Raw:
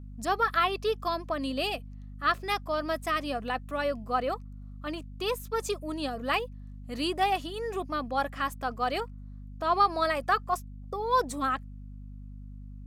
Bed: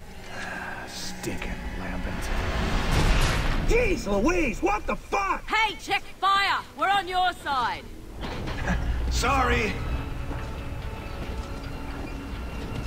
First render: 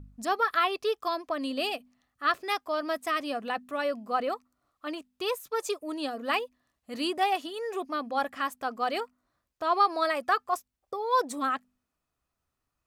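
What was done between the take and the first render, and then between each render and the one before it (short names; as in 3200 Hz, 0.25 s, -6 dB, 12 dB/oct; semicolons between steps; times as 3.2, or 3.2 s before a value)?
de-hum 50 Hz, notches 5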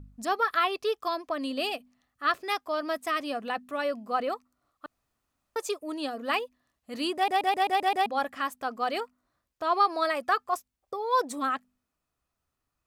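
4.86–5.56 room tone; 7.15 stutter in place 0.13 s, 7 plays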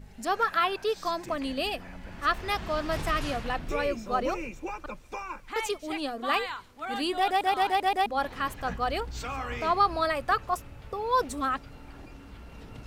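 add bed -12 dB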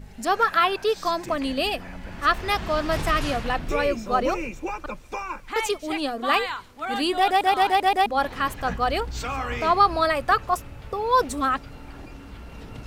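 gain +5.5 dB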